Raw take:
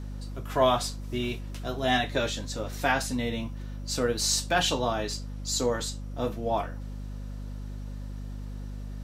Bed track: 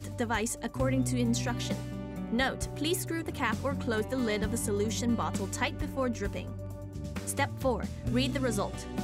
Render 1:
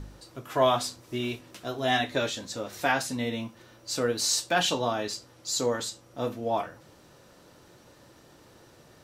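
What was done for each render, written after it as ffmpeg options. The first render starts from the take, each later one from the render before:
-af "bandreject=f=50:t=h:w=4,bandreject=f=100:t=h:w=4,bandreject=f=150:t=h:w=4,bandreject=f=200:t=h:w=4,bandreject=f=250:t=h:w=4"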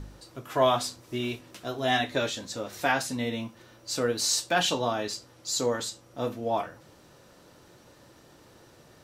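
-af anull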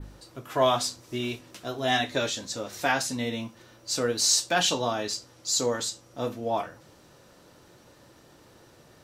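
-af "adynamicequalizer=threshold=0.00631:dfrequency=6100:dqfactor=1:tfrequency=6100:tqfactor=1:attack=5:release=100:ratio=0.375:range=2.5:mode=boostabove:tftype=bell"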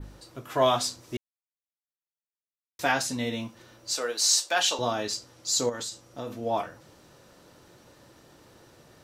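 -filter_complex "[0:a]asettb=1/sr,asplit=3[a][b][c];[a]atrim=end=3.934[d];[b]atrim=start=3.93:end=4.79,asetpts=PTS-STARTPTS,afade=t=in:d=0.004:c=qsin,afade=t=out:st=0.856:d=0.004:c=qsin,highpass=540[e];[c]atrim=start=4.786[f];[d][e]acrossfade=d=0.004:c1=hsin:c2=qsin[g];[g][f]acrossfade=d=0.004:c1=qsin:c2=hsin,asettb=1/sr,asplit=3[h][i][j];[h]atrim=end=5.694[k];[i]atrim=start=5.69:end=6.34,asetpts=PTS-STARTPTS,afade=t=in:d=0.004:c=qsin,afade=t=out:st=0.646:d=0.004:c=qsin,acompressor=threshold=-31dB:ratio=4:attack=3.2:release=140:knee=1:detection=peak[l];[j]atrim=start=6.336[m];[k][l]acrossfade=d=0.004:c1=hsin:c2=qsin[n];[n][m]acrossfade=d=0.004:c1=qsin:c2=hsin,asplit=3[o][p][q];[o]atrim=end=1.17,asetpts=PTS-STARTPTS,afade=t=out:st=1.166:d=0.004:c=hsin[r];[p]atrim=start=1.17:end=2.79,asetpts=PTS-STARTPTS,volume=0[s];[q]atrim=start=2.79,asetpts=PTS-STARTPTS,afade=t=in:d=0.004:c=hsin[t];[r][s][t]concat=n=3:v=0:a=1"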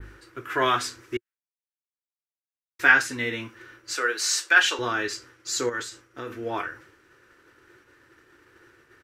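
-af "firequalizer=gain_entry='entry(110,0);entry(170,-11);entry(360,8);entry(620,-9);entry(1500,14);entry(3800,-3)':delay=0.05:min_phase=1,agate=range=-33dB:threshold=-45dB:ratio=3:detection=peak"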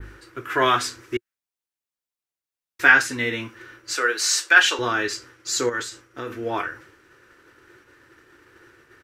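-af "volume=3.5dB,alimiter=limit=-1dB:level=0:latency=1"

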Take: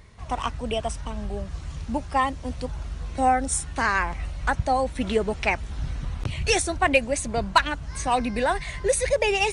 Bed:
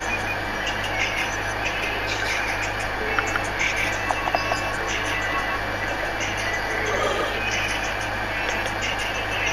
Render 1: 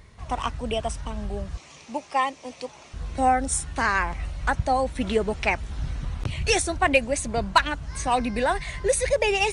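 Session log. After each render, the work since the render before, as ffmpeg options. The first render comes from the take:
-filter_complex "[0:a]asettb=1/sr,asplit=3[a][b][c];[a]atrim=end=1.574[d];[b]atrim=start=1.57:end=2.94,asetpts=PTS-STARTPTS,afade=t=in:d=0.004:c=qsin,afade=t=out:st=1.366:d=0.004:c=qsin,highpass=370,equalizer=f=1.5k:t=q:w=4:g=-8,equalizer=f=2.4k:t=q:w=4:g=6,equalizer=f=6k:t=q:w=4:g=5,lowpass=f=9.4k:w=0.5412,lowpass=f=9.4k:w=1.3066[e];[c]atrim=start=2.936[f];[d][e]acrossfade=d=0.004:c1=hsin:c2=qsin[g];[g][f]acrossfade=d=0.004:c1=qsin:c2=hsin"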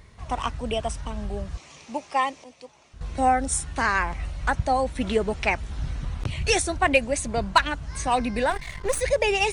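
-filter_complex "[0:a]asettb=1/sr,asplit=3[a][b][c];[a]atrim=end=8.504[d];[b]atrim=start=8.5:end=9.01,asetpts=PTS-STARTPTS,afade=t=in:d=0.004:c=qsin,afade=t=out:st=0.506:d=0.004:c=qsin,aeval=exprs='if(lt(val(0),0),0.251*val(0),val(0))':c=same[e];[c]atrim=start=9.006[f];[d][e]acrossfade=d=0.004:c1=hsin:c2=qsin[g];[g][f]acrossfade=d=0.004:c1=qsin:c2=hsin,asplit=3[h][i][j];[h]atrim=end=2.442[k];[i]atrim=start=2.438:end=3.012,asetpts=PTS-STARTPTS,volume=-9.5dB[l];[j]atrim=start=3.008[m];[k][l]acrossfade=d=0.004:c1=hsin:c2=hsin[n];[n][m]acrossfade=d=0.004:c1=hsin:c2=hsin"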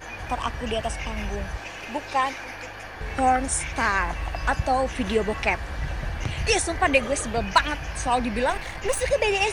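-filter_complex "[1:a]volume=-12dB[a];[0:a][a]amix=inputs=2:normalize=0"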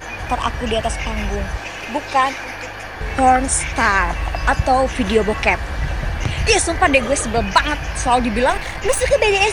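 -af "volume=7.5dB,alimiter=limit=-2dB:level=0:latency=1"

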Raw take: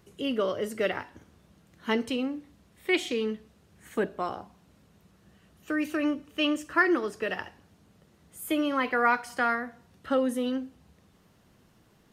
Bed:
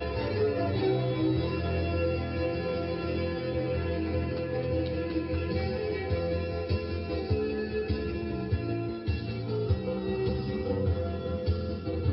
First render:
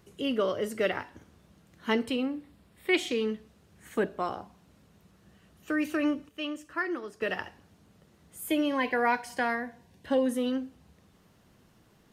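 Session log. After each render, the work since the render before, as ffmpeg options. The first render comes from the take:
-filter_complex "[0:a]asettb=1/sr,asplit=3[a][b][c];[a]atrim=end=1.994[d];[b]atrim=start=1.99:end=2.94,asetpts=PTS-STARTPTS,afade=t=in:d=0.004:c=qsin,afade=t=out:st=0.946:d=0.004:c=qsin,equalizer=f=6.2k:t=o:w=0.33:g=-8.5[e];[c]atrim=start=2.936[f];[d][e]acrossfade=d=0.004:c1=hsin:c2=qsin[g];[g][f]acrossfade=d=0.004:c1=qsin:c2=hsin,asettb=1/sr,asplit=3[h][i][j];[h]atrim=end=8.484[k];[i]atrim=start=8.48:end=10.26,asetpts=PTS-STARTPTS,afade=t=in:d=0.004:c=qsin,afade=t=out:st=1.776:d=0.004:c=qsin,asuperstop=centerf=1300:order=4:qfactor=3.6[l];[j]atrim=start=10.256[m];[k][l]acrossfade=d=0.004:c1=hsin:c2=qsin[n];[n][m]acrossfade=d=0.004:c1=qsin:c2=hsin,asplit=3[o][p][q];[o]atrim=end=6.292[r];[p]atrim=start=6.288:end=7.212,asetpts=PTS-STARTPTS,volume=-8.5dB[s];[q]atrim=start=7.208[t];[r][s]acrossfade=d=0.004:c1=hsin:c2=hsin[u];[u][t]acrossfade=d=0.004:c1=hsin:c2=hsin"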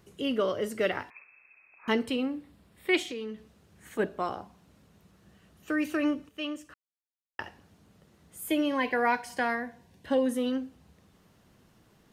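-filter_complex "[0:a]asettb=1/sr,asplit=3[a][b][c];[a]atrim=end=1.104[d];[b]atrim=start=1.1:end=1.88,asetpts=PTS-STARTPTS,afade=t=in:d=0.004:c=qsin,afade=t=out:st=0.776:d=0.004:c=qsin,lowpass=f=2.3k:t=q:w=0.5098,lowpass=f=2.3k:t=q:w=0.6013,lowpass=f=2.3k:t=q:w=0.9,lowpass=f=2.3k:t=q:w=2.563,afreqshift=-2700[e];[c]atrim=start=1.876[f];[d][e]acrossfade=d=0.004:c1=hsin:c2=qsin[g];[g][f]acrossfade=d=0.004:c1=qsin:c2=hsin,asplit=3[h][i][j];[h]afade=t=out:st=3.02:d=0.02[k];[i]acompressor=threshold=-37dB:ratio=2.5:attack=3.2:release=140:knee=1:detection=peak,afade=t=in:st=3.02:d=0.02,afade=t=out:st=3.98:d=0.02[l];[j]afade=t=in:st=3.98:d=0.02[m];[k][l][m]amix=inputs=3:normalize=0,asplit=3[n][o][p];[n]atrim=end=6.74,asetpts=PTS-STARTPTS,afade=t=out:st=6.736:d=0.004:c=hsin[q];[o]atrim=start=6.74:end=7.39,asetpts=PTS-STARTPTS,volume=0[r];[p]atrim=start=7.39,asetpts=PTS-STARTPTS,afade=t=in:d=0.004:c=hsin[s];[q][r][s]concat=n=3:v=0:a=1"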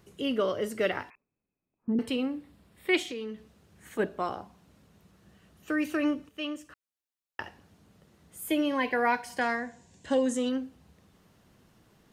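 -filter_complex "[0:a]asettb=1/sr,asplit=3[a][b][c];[a]atrim=end=1.154[d];[b]atrim=start=1.15:end=1.99,asetpts=PTS-STARTPTS,afade=t=in:d=0.004:c=qsin,afade=t=out:st=0.836:d=0.004:c=qsin,lowpass=f=230:t=q:w=1.5[e];[c]atrim=start=1.986[f];[d][e]acrossfade=d=0.004:c1=hsin:c2=qsin[g];[g][f]acrossfade=d=0.004:c1=qsin:c2=hsin,asettb=1/sr,asplit=3[h][i][j];[h]atrim=end=9.414[k];[i]atrim=start=9.41:end=10.49,asetpts=PTS-STARTPTS,afade=t=in:d=0.004:c=qsin,afade=t=out:st=1.076:d=0.004:c=qsin,lowpass=f=7.3k:t=q:w=7.3[l];[j]atrim=start=10.486[m];[k][l]acrossfade=d=0.004:c1=hsin:c2=qsin[n];[n][m]acrossfade=d=0.004:c1=qsin:c2=hsin"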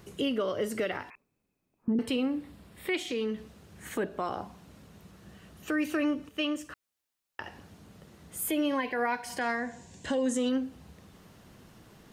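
-filter_complex "[0:a]asplit=2[a][b];[b]acompressor=threshold=-36dB:ratio=6,volume=2.5dB[c];[a][c]amix=inputs=2:normalize=0,alimiter=limit=-21dB:level=0:latency=1:release=187"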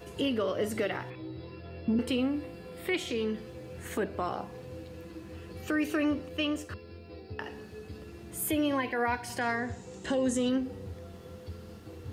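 -filter_complex "[1:a]volume=-14.5dB[a];[0:a][a]amix=inputs=2:normalize=0"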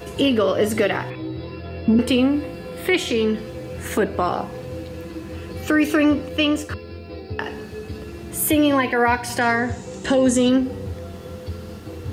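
-af "volume=11.5dB"

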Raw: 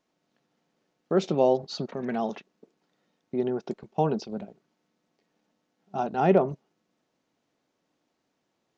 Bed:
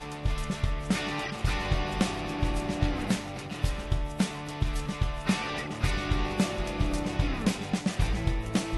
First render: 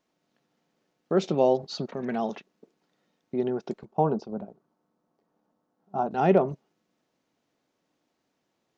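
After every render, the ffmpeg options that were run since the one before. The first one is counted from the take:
-filter_complex "[0:a]asettb=1/sr,asplit=3[a][b][c];[a]atrim=end=3.854[d];[b]atrim=start=3.85:end=6.11,asetpts=PTS-STARTPTS,afade=t=in:d=0.004:c=qsin,afade=t=out:st=2.256:d=0.004:c=qsin,highshelf=f=1.6k:t=q:w=1.5:g=-10[e];[c]atrim=start=6.106[f];[d][e]acrossfade=d=0.004:c1=hsin:c2=qsin[g];[g][f]acrossfade=d=0.004:c1=qsin:c2=hsin"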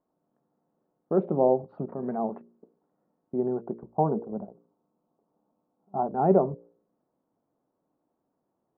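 -af "lowpass=f=1.1k:w=0.5412,lowpass=f=1.1k:w=1.3066,bandreject=f=58.45:t=h:w=4,bandreject=f=116.9:t=h:w=4,bandreject=f=175.35:t=h:w=4,bandreject=f=233.8:t=h:w=4,bandreject=f=292.25:t=h:w=4,bandreject=f=350.7:t=h:w=4,bandreject=f=409.15:t=h:w=4,bandreject=f=467.6:t=h:w=4,bandreject=f=526.05:t=h:w=4,bandreject=f=584.5:t=h:w=4"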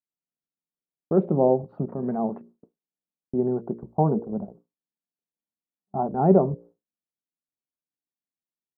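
-af "agate=range=-33dB:threshold=-48dB:ratio=3:detection=peak,lowshelf=f=240:g=10"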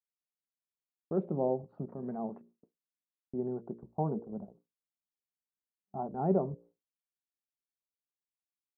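-af "volume=-11dB"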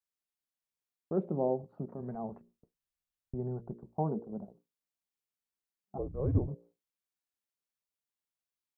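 -filter_complex "[0:a]asplit=3[a][b][c];[a]afade=t=out:st=2:d=0.02[d];[b]asubboost=boost=11.5:cutoff=89,afade=t=in:st=2:d=0.02,afade=t=out:st=3.74:d=0.02[e];[c]afade=t=in:st=3.74:d=0.02[f];[d][e][f]amix=inputs=3:normalize=0,asplit=3[g][h][i];[g]afade=t=out:st=5.97:d=0.02[j];[h]afreqshift=-290,afade=t=in:st=5.97:d=0.02,afade=t=out:st=6.47:d=0.02[k];[i]afade=t=in:st=6.47:d=0.02[l];[j][k][l]amix=inputs=3:normalize=0"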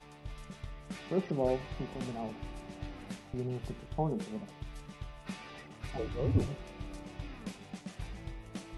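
-filter_complex "[1:a]volume=-15.5dB[a];[0:a][a]amix=inputs=2:normalize=0"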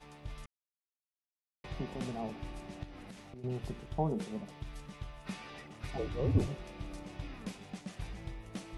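-filter_complex "[0:a]asettb=1/sr,asplit=3[a][b][c];[a]atrim=end=2.834[d];[b]atrim=start=2.83:end=3.44,asetpts=PTS-STARTPTS,afade=t=in:d=0.004:c=qsin,afade=t=out:st=0.606:d=0.004:c=qsin,acompressor=threshold=-44dB:ratio=16:attack=3.2:release=140:knee=1:detection=peak[e];[c]atrim=start=3.436[f];[d][e]acrossfade=d=0.004:c1=hsin:c2=qsin[g];[g][f]acrossfade=d=0.004:c1=qsin:c2=hsin,asplit=3[h][i][j];[h]atrim=end=0.46,asetpts=PTS-STARTPTS,afade=t=out:st=0.456:d=0.004:c=hsin[k];[i]atrim=start=0.46:end=1.64,asetpts=PTS-STARTPTS,volume=0[l];[j]atrim=start=1.64,asetpts=PTS-STARTPTS,afade=t=in:d=0.004:c=hsin[m];[k][l][m]concat=n=3:v=0:a=1"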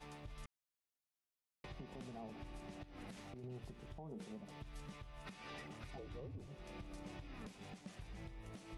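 -af "acompressor=threshold=-45dB:ratio=4,alimiter=level_in=16.5dB:limit=-24dB:level=0:latency=1:release=200,volume=-16.5dB"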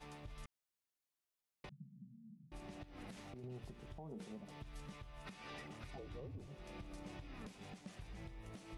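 -filter_complex "[0:a]asettb=1/sr,asplit=3[a][b][c];[a]atrim=end=1.694[d];[b]atrim=start=1.69:end=2.52,asetpts=PTS-STARTPTS,afade=t=in:d=0.004:c=qsin,afade=t=out:st=0.826:d=0.004:c=qsin,asuperpass=centerf=170:order=8:qfactor=2[e];[c]atrim=start=2.516[f];[d][e]acrossfade=d=0.004:c1=hsin:c2=qsin[g];[g][f]acrossfade=d=0.004:c1=qsin:c2=hsin"

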